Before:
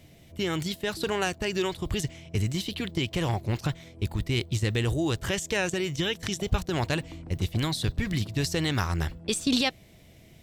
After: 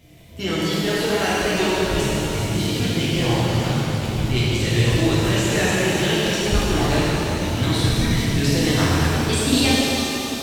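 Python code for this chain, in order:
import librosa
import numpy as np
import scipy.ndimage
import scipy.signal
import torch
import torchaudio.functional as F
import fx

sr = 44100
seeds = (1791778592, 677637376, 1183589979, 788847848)

y = fx.spec_quant(x, sr, step_db=15)
y = fx.rev_shimmer(y, sr, seeds[0], rt60_s=3.4, semitones=7, shimmer_db=-8, drr_db=-8.5)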